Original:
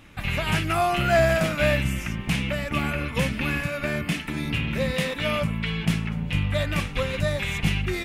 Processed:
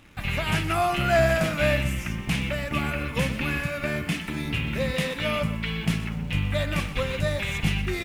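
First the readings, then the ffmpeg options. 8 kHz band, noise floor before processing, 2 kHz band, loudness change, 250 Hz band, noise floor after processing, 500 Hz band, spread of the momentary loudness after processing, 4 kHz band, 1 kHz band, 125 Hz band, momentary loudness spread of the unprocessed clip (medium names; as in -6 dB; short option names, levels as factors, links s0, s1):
-1.0 dB, -35 dBFS, -1.0 dB, -1.0 dB, -1.5 dB, -35 dBFS, -1.0 dB, 6 LU, -1.0 dB, -1.0 dB, -1.0 dB, 6 LU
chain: -filter_complex "[0:a]asplit=2[s0][s1];[s1]acrusher=bits=6:mix=0:aa=0.000001,volume=0.316[s2];[s0][s2]amix=inputs=2:normalize=0,aecho=1:1:124:0.2,volume=0.668"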